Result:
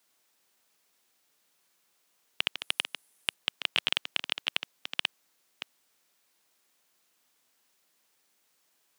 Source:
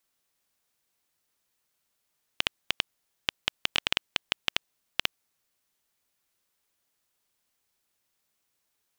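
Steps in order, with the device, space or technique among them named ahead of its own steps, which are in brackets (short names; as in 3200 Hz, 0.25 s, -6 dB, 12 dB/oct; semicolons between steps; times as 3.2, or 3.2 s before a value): reverse delay 0.314 s, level -13 dB; compact cassette (soft clip -10.5 dBFS, distortion -12 dB; LPF 8900 Hz; wow and flutter; white noise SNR 33 dB); HPF 190 Hz 12 dB/oct; 2.58–3.34 bell 10000 Hz +11.5 dB 0.54 oct; gain +2.5 dB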